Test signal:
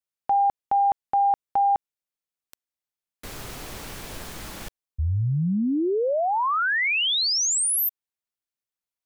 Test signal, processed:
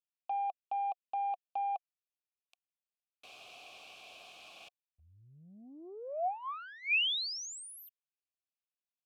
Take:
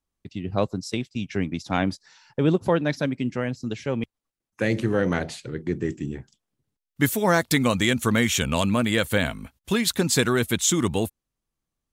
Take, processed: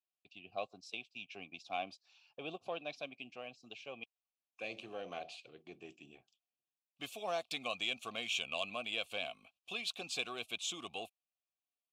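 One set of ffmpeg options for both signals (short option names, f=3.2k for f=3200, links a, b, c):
-filter_complex "[0:a]aeval=exprs='0.398*(cos(1*acos(clip(val(0)/0.398,-1,1)))-cos(1*PI/2))+0.00631*(cos(4*acos(clip(val(0)/0.398,-1,1)))-cos(4*PI/2))+0.0141*(cos(5*acos(clip(val(0)/0.398,-1,1)))-cos(5*PI/2))+0.00794*(cos(6*acos(clip(val(0)/0.398,-1,1)))-cos(6*PI/2))':c=same,asplit=3[a][b][c];[a]bandpass=f=730:t=q:w=8,volume=0dB[d];[b]bandpass=f=1.09k:t=q:w=8,volume=-6dB[e];[c]bandpass=f=2.44k:t=q:w=8,volume=-9dB[f];[d][e][f]amix=inputs=3:normalize=0,highshelf=f=2.1k:t=q:w=1.5:g=12.5,volume=-7dB"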